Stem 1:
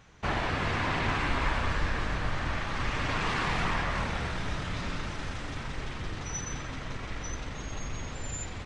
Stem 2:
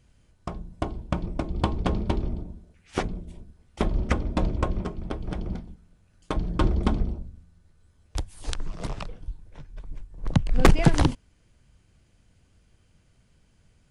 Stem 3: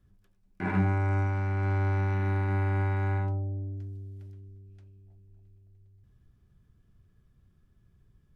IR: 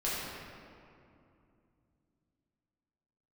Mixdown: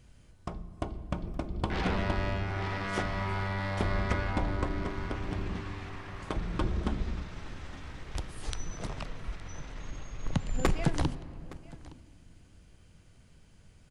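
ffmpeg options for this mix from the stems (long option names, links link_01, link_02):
-filter_complex "[0:a]alimiter=level_in=6.5dB:limit=-24dB:level=0:latency=1,volume=-6.5dB,adelay=2250,volume=-9dB,asplit=2[link_01][link_02];[link_02]volume=-10.5dB[link_03];[1:a]acompressor=threshold=-50dB:ratio=1.5,volume=2.5dB,asplit=3[link_04][link_05][link_06];[link_05]volume=-20.5dB[link_07];[link_06]volume=-20dB[link_08];[2:a]lowshelf=frequency=120:gain=-8.5,aeval=exprs='0.133*sin(PI/2*5.01*val(0)/0.133)':channel_layout=same,adelay=1100,volume=-16dB,asplit=3[link_09][link_10][link_11];[link_10]volume=-9dB[link_12];[link_11]volume=-4.5dB[link_13];[3:a]atrim=start_sample=2205[link_14];[link_03][link_07][link_12]amix=inputs=3:normalize=0[link_15];[link_15][link_14]afir=irnorm=-1:irlink=0[link_16];[link_08][link_13]amix=inputs=2:normalize=0,aecho=0:1:866:1[link_17];[link_01][link_04][link_09][link_16][link_17]amix=inputs=5:normalize=0"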